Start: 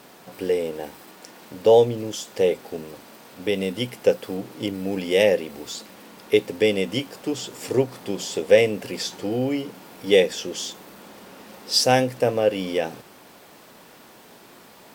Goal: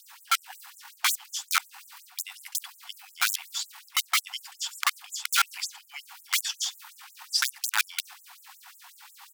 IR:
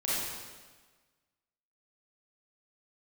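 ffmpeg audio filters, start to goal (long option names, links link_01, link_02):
-af "highpass=frequency=420:width_type=q:width=4,aeval=exprs='(mod(2*val(0)+1,2)-1)/2':channel_layout=same,areverse,acompressor=threshold=-22dB:ratio=5,areverse,atempo=1.6,afftfilt=real='re*gte(b*sr/1024,710*pow(7000/710,0.5+0.5*sin(2*PI*5.5*pts/sr)))':imag='im*gte(b*sr/1024,710*pow(7000/710,0.5+0.5*sin(2*PI*5.5*pts/sr)))':win_size=1024:overlap=0.75,volume=3dB"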